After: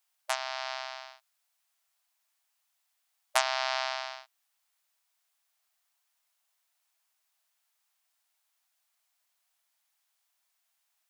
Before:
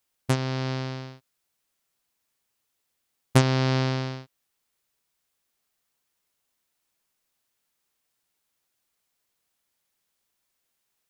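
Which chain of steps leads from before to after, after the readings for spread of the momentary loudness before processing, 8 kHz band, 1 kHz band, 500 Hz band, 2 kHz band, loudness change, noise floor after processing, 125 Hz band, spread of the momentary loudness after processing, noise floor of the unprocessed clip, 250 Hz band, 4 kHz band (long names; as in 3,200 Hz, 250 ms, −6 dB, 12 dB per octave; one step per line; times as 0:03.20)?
16 LU, 0.0 dB, 0.0 dB, −7.0 dB, 0.0 dB, −6.0 dB, −78 dBFS, below −40 dB, 16 LU, −78 dBFS, below −40 dB, 0.0 dB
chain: linear-phase brick-wall high-pass 600 Hz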